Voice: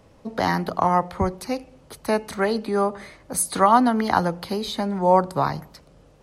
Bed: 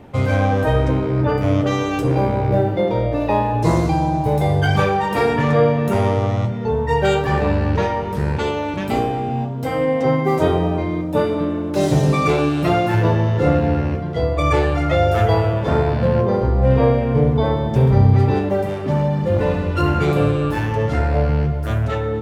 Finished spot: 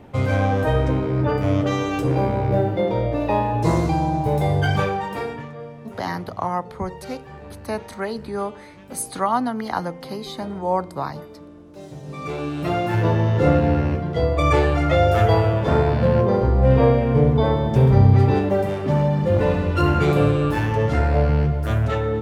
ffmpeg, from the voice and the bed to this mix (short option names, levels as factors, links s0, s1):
-filter_complex "[0:a]adelay=5600,volume=0.562[s0];[1:a]volume=8.41,afade=t=out:st=4.63:d=0.89:silence=0.112202,afade=t=in:st=12.04:d=1.35:silence=0.0891251[s1];[s0][s1]amix=inputs=2:normalize=0"